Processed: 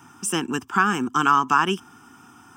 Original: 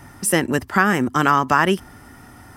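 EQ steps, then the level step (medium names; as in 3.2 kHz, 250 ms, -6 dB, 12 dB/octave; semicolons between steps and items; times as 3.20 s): high-pass 230 Hz 12 dB/octave; static phaser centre 2.9 kHz, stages 8; 0.0 dB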